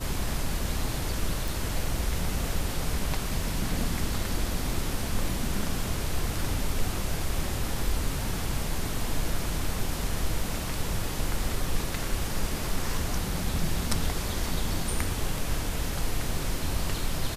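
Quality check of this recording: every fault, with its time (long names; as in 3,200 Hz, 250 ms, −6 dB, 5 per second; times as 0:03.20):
0:01.48: click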